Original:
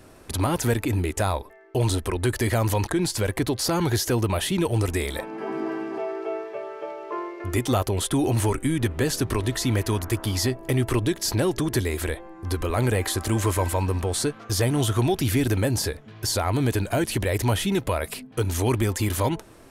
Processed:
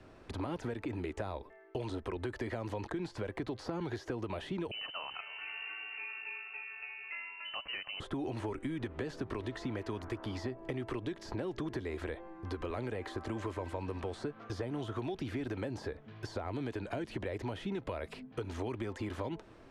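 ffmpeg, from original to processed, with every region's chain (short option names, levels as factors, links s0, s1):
-filter_complex "[0:a]asettb=1/sr,asplit=3[s0][s1][s2];[s0]atrim=end=4.714[s3];[s1]atrim=start=4.71:end=8,asetpts=PTS-STARTPTS,afade=t=in:d=0.004:c=qsin,afade=t=out:st=3.286:d=0.004:c=qsin,lowpass=f=2600:t=q:w=0.5098,lowpass=f=2600:t=q:w=0.6013,lowpass=f=2600:t=q:w=0.9,lowpass=f=2600:t=q:w=2.563,afreqshift=-3100,aecho=1:1:306|612|918:0.15|0.0494|0.0163,atrim=end_sample=145089[s4];[s2]atrim=start=7.996[s5];[s3][s4]acrossfade=d=0.004:c1=hsin:c2=qsin[s6];[s6][s5]acrossfade=d=0.004:c1=qsin:c2=hsin,acrossover=split=210|570|1700[s7][s8][s9][s10];[s7]acompressor=threshold=0.0158:ratio=4[s11];[s8]acompressor=threshold=0.0562:ratio=4[s12];[s9]acompressor=threshold=0.0178:ratio=4[s13];[s10]acompressor=threshold=0.0112:ratio=4[s14];[s11][s12][s13][s14]amix=inputs=4:normalize=0,lowpass=3900,acompressor=threshold=0.0447:ratio=6,volume=0.473"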